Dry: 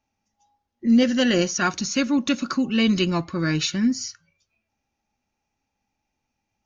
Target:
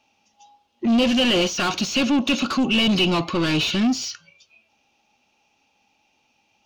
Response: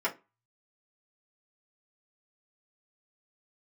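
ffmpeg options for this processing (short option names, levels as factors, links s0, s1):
-filter_complex "[0:a]asplit=2[s0][s1];[s1]highpass=f=720:p=1,volume=22.4,asoftclip=type=tanh:threshold=0.355[s2];[s0][s2]amix=inputs=2:normalize=0,lowpass=f=1200:p=1,volume=0.501,acrossover=split=3100[s3][s4];[s4]acompressor=threshold=0.02:ratio=4:attack=1:release=60[s5];[s3][s5]amix=inputs=2:normalize=0,highshelf=f=2300:t=q:w=3:g=6.5,volume=0.75"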